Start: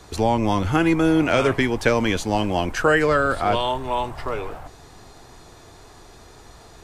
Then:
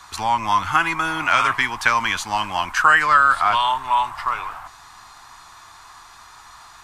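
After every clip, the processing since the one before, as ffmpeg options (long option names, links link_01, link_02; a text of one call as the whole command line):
ffmpeg -i in.wav -af "lowshelf=frequency=710:width_type=q:width=3:gain=-14,volume=3dB" out.wav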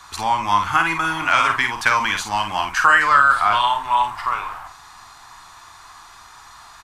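ffmpeg -i in.wav -filter_complex "[0:a]asplit=2[link_01][link_02];[link_02]adelay=49,volume=-6.5dB[link_03];[link_01][link_03]amix=inputs=2:normalize=0" out.wav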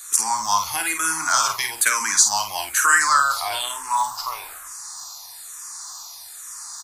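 ffmpeg -i in.wav -filter_complex "[0:a]lowshelf=frequency=250:gain=-10.5,acrossover=split=170|1400[link_01][link_02][link_03];[link_03]aexciter=amount=9.9:drive=5.9:freq=4500[link_04];[link_01][link_02][link_04]amix=inputs=3:normalize=0,asplit=2[link_05][link_06];[link_06]afreqshift=-1.1[link_07];[link_05][link_07]amix=inputs=2:normalize=1,volume=-2dB" out.wav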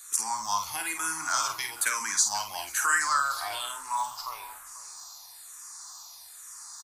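ffmpeg -i in.wav -filter_complex "[0:a]asplit=2[link_01][link_02];[link_02]adelay=489.8,volume=-16dB,highshelf=frequency=4000:gain=-11[link_03];[link_01][link_03]amix=inputs=2:normalize=0,volume=-8.5dB" out.wav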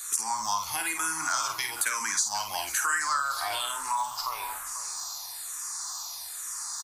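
ffmpeg -i in.wav -af "acompressor=threshold=-39dB:ratio=2.5,volume=9dB" out.wav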